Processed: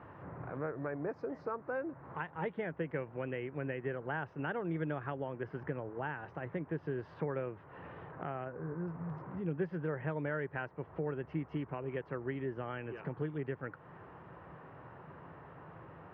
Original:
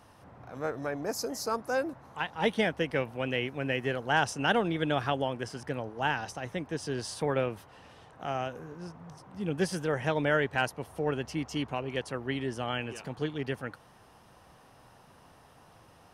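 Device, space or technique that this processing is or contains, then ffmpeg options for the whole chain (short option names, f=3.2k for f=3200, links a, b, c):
bass amplifier: -filter_complex "[0:a]asplit=3[a][b][c];[a]afade=t=out:st=8.44:d=0.02[d];[b]lowpass=f=2.1k:w=0.5412,lowpass=f=2.1k:w=1.3066,afade=t=in:st=8.44:d=0.02,afade=t=out:st=8.86:d=0.02[e];[c]afade=t=in:st=8.86:d=0.02[f];[d][e][f]amix=inputs=3:normalize=0,acompressor=threshold=-45dB:ratio=3,highpass=77,equalizer=f=160:t=q:w=4:g=6,equalizer=f=220:t=q:w=4:g=-6,equalizer=f=370:t=q:w=4:g=4,equalizer=f=750:t=q:w=4:g=-5,lowpass=f=2k:w=0.5412,lowpass=f=2k:w=1.3066,volume=6dB"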